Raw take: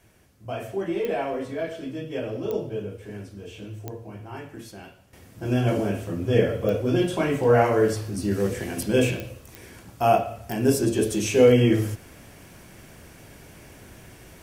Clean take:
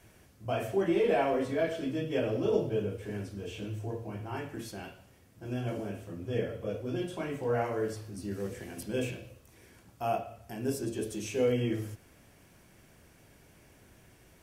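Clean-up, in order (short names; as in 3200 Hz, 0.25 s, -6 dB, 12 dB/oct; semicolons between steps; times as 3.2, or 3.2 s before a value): de-click; gain correction -12 dB, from 5.13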